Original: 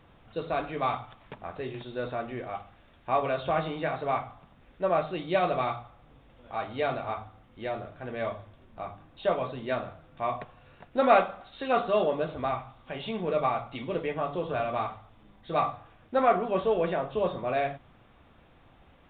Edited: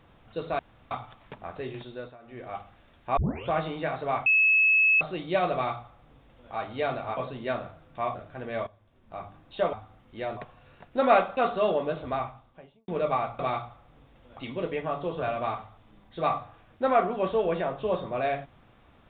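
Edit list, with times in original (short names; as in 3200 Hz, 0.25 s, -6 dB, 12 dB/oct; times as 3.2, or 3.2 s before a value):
0.59–0.91 room tone
1.81–2.57 dip -20 dB, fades 0.37 s
3.17 tape start 0.32 s
4.26–5.01 bleep 2590 Hz -17.5 dBFS
5.53–6.53 copy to 13.71
7.17–7.81 swap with 9.39–10.37
8.33–8.88 fade in quadratic, from -14 dB
11.37–11.69 cut
12.44–13.2 studio fade out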